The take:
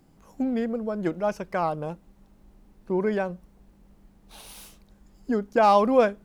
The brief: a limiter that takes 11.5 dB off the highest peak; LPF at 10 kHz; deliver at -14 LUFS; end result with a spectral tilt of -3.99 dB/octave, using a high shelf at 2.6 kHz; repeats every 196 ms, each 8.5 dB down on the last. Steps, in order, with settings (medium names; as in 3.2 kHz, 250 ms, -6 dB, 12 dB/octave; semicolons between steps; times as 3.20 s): low-pass 10 kHz; treble shelf 2.6 kHz -3.5 dB; peak limiter -19.5 dBFS; feedback delay 196 ms, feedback 38%, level -8.5 dB; trim +15.5 dB